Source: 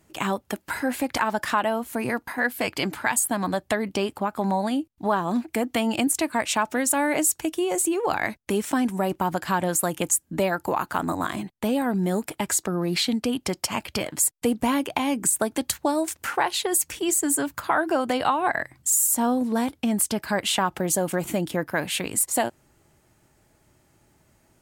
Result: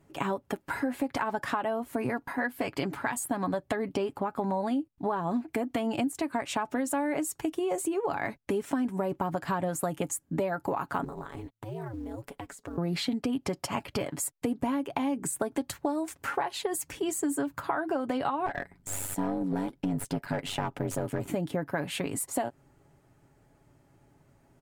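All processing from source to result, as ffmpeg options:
ffmpeg -i in.wav -filter_complex "[0:a]asettb=1/sr,asplit=3[link_01][link_02][link_03];[link_01]atrim=end=11.044[link_04];[link_02]atrim=start=11.04:end=12.78,asetpts=PTS-STARTPTS,afade=type=in:duration=0.004:curve=qsin,afade=type=out:start_time=1.736:duration=0.004:curve=qsin,acompressor=threshold=-33dB:ratio=5:attack=3.2:release=140:knee=1:detection=peak,aeval=exprs='val(0)*sin(2*PI*110*n/s)':channel_layout=same,acrusher=bits=6:mode=log:mix=0:aa=0.000001[link_05];[link_03]atrim=start=12.776[link_06];[link_04][link_05]acrossfade=duration=0.004:curve1=hsin:curve2=qsin[link_07];[link_07][link_06]acrossfade=duration=0.004:curve1=qsin:curve2=hsin,asettb=1/sr,asplit=3[link_08][link_09][link_10];[link_08]atrim=end=18.464[link_11];[link_09]atrim=start=18.46:end=21.28,asetpts=PTS-STARTPTS,afade=type=in:duration=0.004:curve=qsin,afade=type=out:start_time=2.816:duration=0.004:curve=qsin,aeval=exprs='val(0)*sin(2*PI*48*n/s)':channel_layout=same,aeval=exprs='clip(val(0),-1,0.0596)':channel_layout=same,bandreject=frequency=1100:width=12[link_12];[link_10]atrim=start=21.276[link_13];[link_11][link_12]acrossfade=duration=0.004:curve1=hsin:curve2=qsin[link_14];[link_14][link_13]acrossfade=duration=0.004:curve1=qsin:curve2=hsin,highshelf=frequency=2100:gain=-12,aecho=1:1:7.2:0.42,acompressor=threshold=-26dB:ratio=6" out.wav

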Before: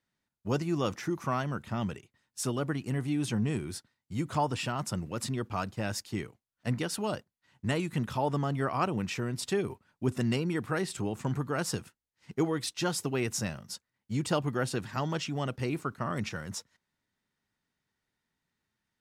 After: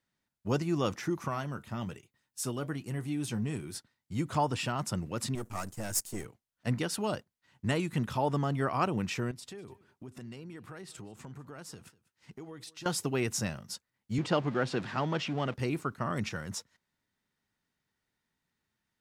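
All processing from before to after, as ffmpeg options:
ffmpeg -i in.wav -filter_complex "[0:a]asettb=1/sr,asplit=3[link_01][link_02][link_03];[link_01]atrim=end=1.284[link_04];[link_02]atrim=start=1.28:end=3.75,asetpts=PTS-STARTPTS,afade=type=in:duration=0.004:curve=qsin,afade=type=out:start_time=2.466:duration=0.004:curve=qsin,highshelf=frequency=10000:gain=10,flanger=delay=5.5:depth=2.9:regen=-70:speed=1.2:shape=triangular[link_05];[link_03]atrim=start=3.746[link_06];[link_04][link_05]acrossfade=duration=0.004:curve1=hsin:curve2=qsin[link_07];[link_07][link_06]acrossfade=duration=0.004:curve1=qsin:curve2=hsin,asettb=1/sr,asplit=3[link_08][link_09][link_10];[link_08]atrim=end=5.354[link_11];[link_09]atrim=start=5.35:end=6.25,asetpts=PTS-STARTPTS,afade=type=in:duration=0.004:curve=qsin,afade=type=out:start_time=0.896:duration=0.004:curve=qsin,aeval=exprs='if(lt(val(0),0),0.251*val(0),val(0))':channel_layout=same,highshelf=frequency=5600:width_type=q:width=1.5:gain=12[link_12];[link_10]atrim=start=6.246[link_13];[link_11][link_12]acrossfade=duration=0.004:curve1=hsin:curve2=qsin[link_14];[link_14][link_13]acrossfade=duration=0.004:curve1=qsin:curve2=hsin,asettb=1/sr,asplit=3[link_15][link_16][link_17];[link_15]atrim=end=9.314[link_18];[link_16]atrim=start=9.31:end=12.86,asetpts=PTS-STARTPTS,afade=type=in:duration=0.004:curve=qsin,afade=type=out:start_time=3.546:duration=0.004:curve=qsin,highpass=43,acompressor=threshold=-45dB:ratio=4:attack=3.2:release=140:knee=1:detection=peak,aecho=1:1:197:0.0944,atrim=end_sample=156555[link_19];[link_17]atrim=start=12.856[link_20];[link_18][link_19]acrossfade=duration=0.004:curve1=hsin:curve2=qsin[link_21];[link_21][link_20]acrossfade=duration=0.004:curve1=qsin:curve2=hsin,asettb=1/sr,asplit=3[link_22][link_23][link_24];[link_22]atrim=end=14.184[link_25];[link_23]atrim=start=14.18:end=15.54,asetpts=PTS-STARTPTS,afade=type=in:duration=0.004:curve=qsin,afade=type=out:start_time=1.356:duration=0.004:curve=qsin,aeval=exprs='val(0)+0.5*0.0119*sgn(val(0))':channel_layout=same,highpass=140,lowpass=4000[link_26];[link_24]atrim=start=15.536[link_27];[link_25][link_26]acrossfade=duration=0.004:curve1=hsin:curve2=qsin[link_28];[link_28][link_27]acrossfade=duration=0.004:curve1=qsin:curve2=hsin" out.wav

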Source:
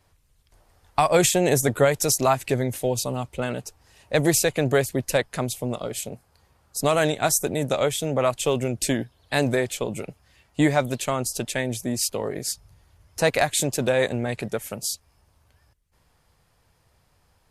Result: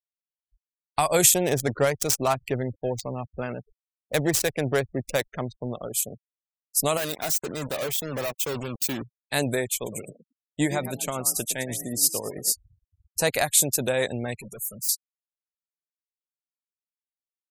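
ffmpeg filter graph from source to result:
ffmpeg -i in.wav -filter_complex "[0:a]asettb=1/sr,asplit=3[link_01][link_02][link_03];[link_01]atrim=end=1.344[link_04];[link_02]atrim=start=1.34:end=5.94,asetpts=PTS-STARTPTS,afade=type=in:duration=0.004:curve=qsin,afade=type=out:start_time=4.596:duration=0.004:curve=qsin,highshelf=frequency=9600:gain=-4.5,adynamicsmooth=sensitivity=4:basefreq=700[link_05];[link_03]atrim=start=5.936[link_06];[link_04][link_05]acrossfade=duration=0.004:curve1=hsin:curve2=qsin[link_07];[link_07][link_06]acrossfade=duration=0.004:curve1=qsin:curve2=hsin,asettb=1/sr,asplit=3[link_08][link_09][link_10];[link_08]atrim=end=6.974[link_11];[link_09]atrim=start=6.97:end=9.02,asetpts=PTS-STARTPTS,afade=type=in:duration=0.004:curve=qsin,afade=type=out:start_time=2.046:duration=0.004:curve=qsin,asoftclip=type=hard:threshold=-23dB,highpass=100,lowpass=6000,acrusher=bits=4:mix=0:aa=0.5[link_12];[link_10]atrim=start=9.016[link_13];[link_11][link_12]acrossfade=duration=0.004:curve1=hsin:curve2=qsin[link_14];[link_14][link_13]acrossfade=duration=0.004:curve1=qsin:curve2=hsin,asettb=1/sr,asplit=3[link_15][link_16][link_17];[link_15]atrim=end=9.754[link_18];[link_16]atrim=start=9.75:end=12.52,asetpts=PTS-STARTPTS,afade=type=in:duration=0.004:curve=qsin,afade=type=out:start_time=2.766:duration=0.004:curve=qsin,asplit=5[link_19][link_20][link_21][link_22][link_23];[link_20]adelay=113,afreqshift=40,volume=-11dB[link_24];[link_21]adelay=226,afreqshift=80,volume=-20.4dB[link_25];[link_22]adelay=339,afreqshift=120,volume=-29.7dB[link_26];[link_23]adelay=452,afreqshift=160,volume=-39.1dB[link_27];[link_19][link_24][link_25][link_26][link_27]amix=inputs=5:normalize=0,atrim=end_sample=122157,tremolo=f=9.1:d=0.41[link_28];[link_17]atrim=start=12.516[link_29];[link_18][link_28]acrossfade=duration=0.004:curve1=hsin:curve2=qsin[link_30];[link_30][link_29]acrossfade=duration=0.004:curve1=qsin:curve2=hsin,asettb=1/sr,asplit=3[link_31][link_32][link_33];[link_31]atrim=end=14.354[link_34];[link_32]atrim=start=14.35:end=14.89,asetpts=PTS-STARTPTS,afade=type=in:duration=0.004:curve=qsin,afade=type=out:start_time=0.536:duration=0.004:curve=qsin,adynamicequalizer=threshold=0.00794:dfrequency=780:dqfactor=1:tfrequency=780:tqfactor=1:attack=5:release=100:ratio=0.375:range=4:mode=cutabove:tftype=bell,volume=34.5dB,asoftclip=hard,volume=-34.5dB[link_35];[link_33]atrim=start=14.886[link_36];[link_34][link_35]acrossfade=duration=0.004:curve1=hsin:curve2=qsin[link_37];[link_37][link_36]acrossfade=duration=0.004:curve1=qsin:curve2=hsin,aemphasis=mode=production:type=50fm,afftfilt=real='re*gte(hypot(re,im),0.02)':imag='im*gte(hypot(re,im),0.02)':win_size=1024:overlap=0.75,volume=-3.5dB" out.wav

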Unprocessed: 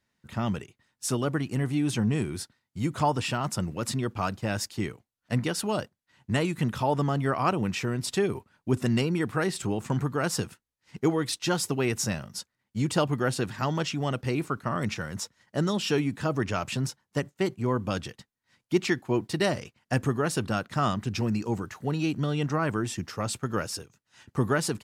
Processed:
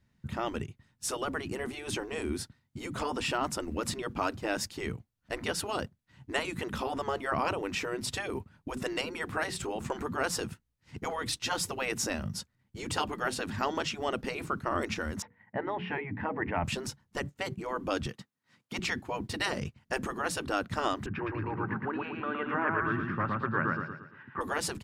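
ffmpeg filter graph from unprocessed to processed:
ffmpeg -i in.wav -filter_complex "[0:a]asettb=1/sr,asplit=3[link_01][link_02][link_03];[link_01]atrim=end=15.224[link_04];[link_02]atrim=start=15.22:end=16.64,asetpts=PTS-STARTPTS,afade=type=in:duration=0.004:curve=qsin,afade=type=out:start_time=1.416:duration=0.004:curve=qsin,highpass=130,equalizer=frequency=140:width_type=q:width=4:gain=-8,equalizer=frequency=380:width_type=q:width=4:gain=-9,equalizer=frequency=540:width_type=q:width=4:gain=-4,equalizer=frequency=860:width_type=q:width=4:gain=7,equalizer=frequency=1300:width_type=q:width=4:gain=-8,equalizer=frequency=2000:width_type=q:width=4:gain=8,lowpass=frequency=2100:width=0.5412,lowpass=frequency=2100:width=1.3066,bandreject=frequency=60:width_type=h:width=6,bandreject=frequency=120:width_type=h:width=6,bandreject=frequency=180:width_type=h:width=6,bandreject=frequency=240:width_type=h:width=6,bandreject=frequency=300:width_type=h:width=6,bandreject=frequency=360:width_type=h:width=6,bandreject=frequency=420:width_type=h:width=6,bandreject=frequency=480:width_type=h:width=6[link_05];[link_03]atrim=start=16.636[link_06];[link_04][link_05]acrossfade=duration=0.004:curve1=hsin:curve2=qsin[link_07];[link_07][link_06]acrossfade=duration=0.004:curve1=qsin:curve2=hsin,asettb=1/sr,asplit=3[link_08][link_09][link_10];[link_08]atrim=end=18.064[link_11];[link_09]atrim=start=18.06:end=18.79,asetpts=PTS-STARTPTS,afade=type=in:duration=0.004:curve=qsin,afade=type=out:start_time=0.726:duration=0.004:curve=qsin,highpass=230,equalizer=frequency=1200:width=5.6:gain=4.5[link_12];[link_10]atrim=start=18.786[link_13];[link_11][link_12]acrossfade=duration=0.004:curve1=hsin:curve2=qsin[link_14];[link_14][link_13]acrossfade=duration=0.004:curve1=qsin:curve2=hsin,asettb=1/sr,asplit=3[link_15][link_16][link_17];[link_15]atrim=end=21.064[link_18];[link_16]atrim=start=21.06:end=24.41,asetpts=PTS-STARTPTS,afade=type=in:duration=0.004:curve=qsin,afade=type=out:start_time=3.346:duration=0.004:curve=qsin,highpass=frequency=160:width=0.5412,highpass=frequency=160:width=1.3066,equalizer=frequency=190:width_type=q:width=4:gain=-8,equalizer=frequency=320:width_type=q:width=4:gain=-4,equalizer=frequency=480:width_type=q:width=4:gain=-9,equalizer=frequency=680:width_type=q:width=4:gain=-7,equalizer=frequency=1100:width_type=q:width=4:gain=6,equalizer=frequency=1600:width_type=q:width=4:gain=9,lowpass=frequency=2200:width=0.5412,lowpass=frequency=2200:width=1.3066,aecho=1:1:114|228|342|456|570:0.668|0.287|0.124|0.0531|0.0228,atrim=end_sample=147735[link_19];[link_17]atrim=start=24.406[link_20];[link_18][link_19]acrossfade=duration=0.004:curve1=hsin:curve2=qsin[link_21];[link_21][link_20]acrossfade=duration=0.004:curve1=qsin:curve2=hsin,bass=frequency=250:gain=14,treble=frequency=4000:gain=-3,afftfilt=real='re*lt(hypot(re,im),0.282)':imag='im*lt(hypot(re,im),0.282)':win_size=1024:overlap=0.75" out.wav

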